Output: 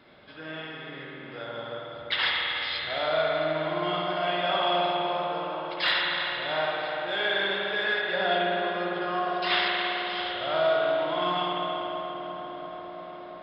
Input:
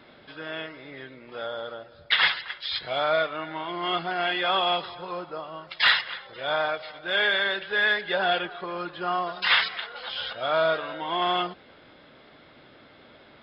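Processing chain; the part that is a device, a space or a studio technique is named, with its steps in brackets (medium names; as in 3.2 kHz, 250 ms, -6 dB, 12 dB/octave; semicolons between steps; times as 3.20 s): dynamic bell 1.7 kHz, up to -4 dB, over -36 dBFS, Q 1; dub delay into a spring reverb (filtered feedback delay 343 ms, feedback 82%, low-pass 2.8 kHz, level -10 dB; spring tank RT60 3 s, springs 51 ms, chirp 25 ms, DRR -3 dB); trim -4.5 dB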